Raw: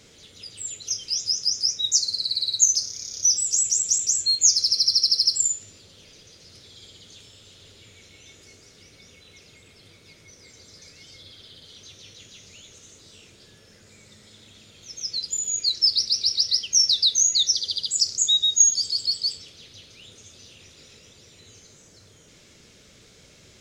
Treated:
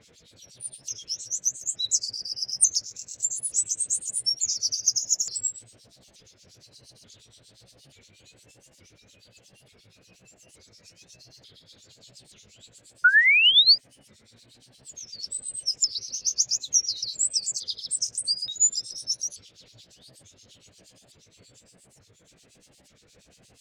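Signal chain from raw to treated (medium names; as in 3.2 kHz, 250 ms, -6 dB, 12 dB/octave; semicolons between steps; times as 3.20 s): sawtooth pitch modulation +5 st, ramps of 880 ms; painted sound rise, 13.04–13.78 s, 1.4–5 kHz -12 dBFS; harmonic tremolo 8.5 Hz, depth 100%, crossover 2.4 kHz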